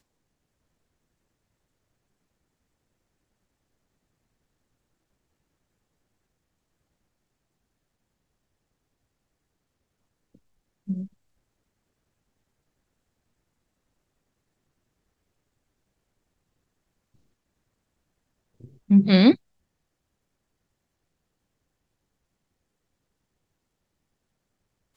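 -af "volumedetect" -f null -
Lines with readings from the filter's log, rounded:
mean_volume: -32.6 dB
max_volume: -5.1 dB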